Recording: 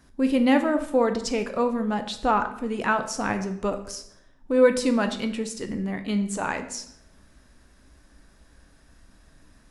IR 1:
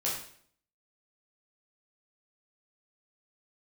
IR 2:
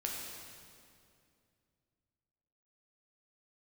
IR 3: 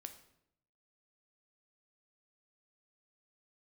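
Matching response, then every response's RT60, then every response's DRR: 3; 0.60 s, 2.4 s, 0.75 s; -6.0 dB, -2.0 dB, 7.0 dB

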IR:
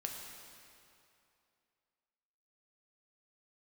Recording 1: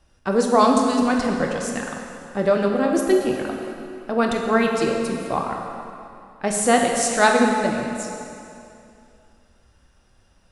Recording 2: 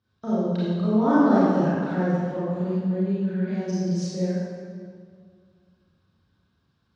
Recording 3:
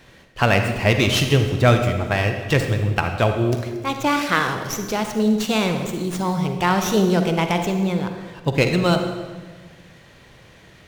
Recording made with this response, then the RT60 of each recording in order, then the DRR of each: 1; 2.7 s, 2.0 s, 1.4 s; 0.5 dB, -10.5 dB, 5.5 dB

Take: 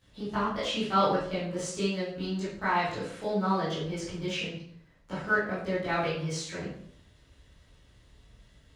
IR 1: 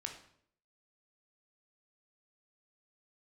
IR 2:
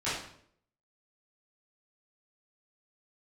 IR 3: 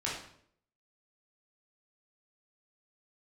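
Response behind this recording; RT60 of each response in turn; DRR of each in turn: 2; 0.65 s, 0.65 s, 0.65 s; 2.5 dB, -14.0 dB, -6.5 dB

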